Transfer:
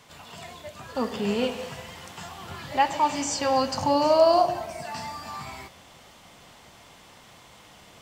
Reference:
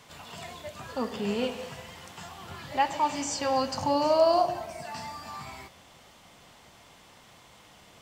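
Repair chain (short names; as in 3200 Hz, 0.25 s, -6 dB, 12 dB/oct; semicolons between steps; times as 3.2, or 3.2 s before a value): gain 0 dB, from 0.95 s -3.5 dB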